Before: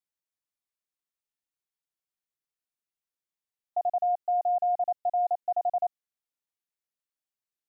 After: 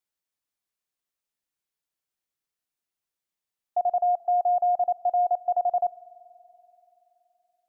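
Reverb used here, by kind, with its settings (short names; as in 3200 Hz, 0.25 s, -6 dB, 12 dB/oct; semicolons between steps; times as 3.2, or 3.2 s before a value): spring tank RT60 3.5 s, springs 47 ms, chirp 50 ms, DRR 19 dB; gain +3.5 dB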